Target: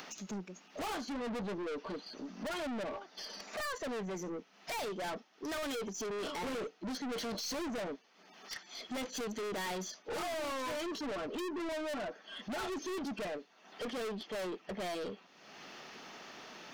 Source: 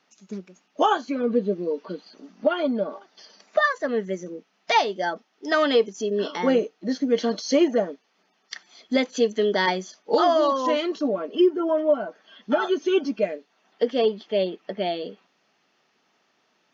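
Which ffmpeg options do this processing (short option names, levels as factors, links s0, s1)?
-af "acompressor=mode=upward:threshold=0.0158:ratio=2.5,aeval=exprs='(tanh(79.4*val(0)+0.1)-tanh(0.1))/79.4':c=same,volume=1.12"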